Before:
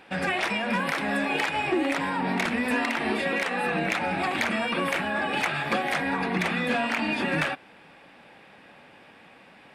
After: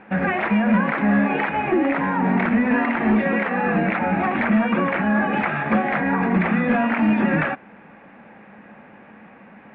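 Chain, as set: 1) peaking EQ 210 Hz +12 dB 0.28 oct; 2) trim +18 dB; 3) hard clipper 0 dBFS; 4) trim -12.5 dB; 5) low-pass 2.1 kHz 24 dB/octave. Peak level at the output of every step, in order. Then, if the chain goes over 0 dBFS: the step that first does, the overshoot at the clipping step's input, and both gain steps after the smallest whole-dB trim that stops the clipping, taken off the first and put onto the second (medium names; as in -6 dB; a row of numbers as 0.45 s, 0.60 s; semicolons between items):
-11.0 dBFS, +7.0 dBFS, 0.0 dBFS, -12.5 dBFS, -10.5 dBFS; step 2, 7.0 dB; step 2 +11 dB, step 4 -5.5 dB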